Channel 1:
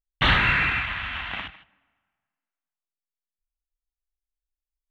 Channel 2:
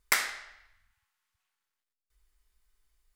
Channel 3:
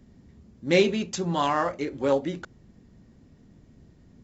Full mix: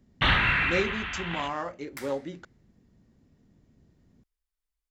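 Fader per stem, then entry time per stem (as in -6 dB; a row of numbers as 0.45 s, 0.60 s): -3.0 dB, -17.0 dB, -8.0 dB; 0.00 s, 1.85 s, 0.00 s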